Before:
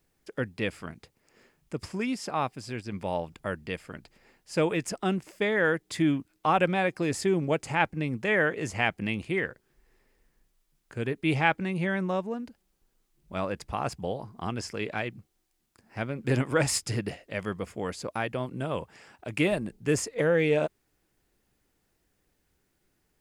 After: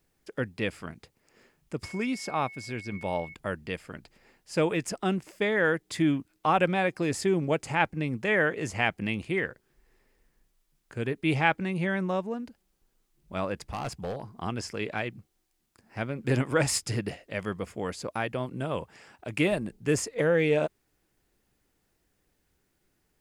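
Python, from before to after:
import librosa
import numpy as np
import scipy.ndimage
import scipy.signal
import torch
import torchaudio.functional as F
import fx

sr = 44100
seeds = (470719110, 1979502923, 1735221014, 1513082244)

y = fx.dmg_tone(x, sr, hz=2200.0, level_db=-43.0, at=(1.83, 3.33), fade=0.02)
y = fx.clip_hard(y, sr, threshold_db=-29.0, at=(13.62, 14.3))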